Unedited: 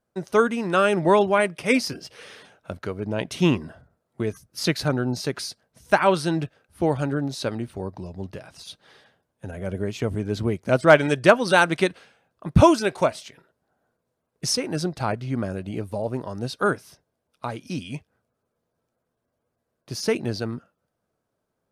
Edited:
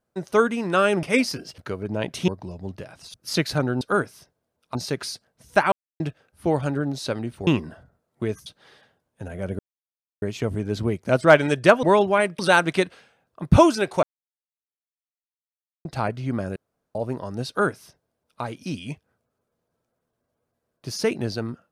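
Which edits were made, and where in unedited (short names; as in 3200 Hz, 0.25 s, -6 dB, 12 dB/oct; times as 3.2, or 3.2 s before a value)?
1.03–1.59 move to 11.43
2.14–2.75 cut
3.45–4.44 swap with 7.83–8.69
6.08–6.36 mute
9.82 insert silence 0.63 s
13.07–14.89 mute
15.6–15.99 room tone
16.52–17.46 copy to 5.11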